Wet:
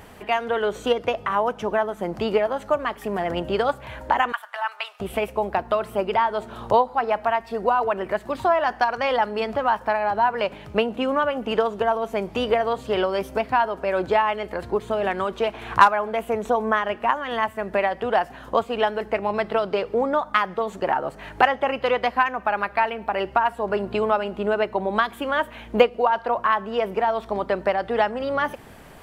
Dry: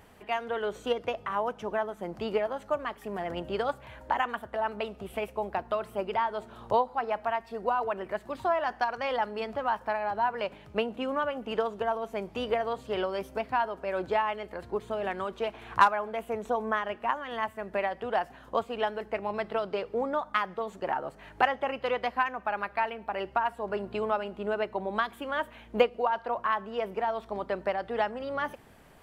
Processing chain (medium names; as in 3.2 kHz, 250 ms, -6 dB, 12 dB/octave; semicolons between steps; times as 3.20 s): 4.32–5.00 s: high-pass 1 kHz 24 dB/octave; in parallel at -3 dB: compression, threshold -36 dBFS, peak gain reduction 19.5 dB; on the sum: trim +6 dB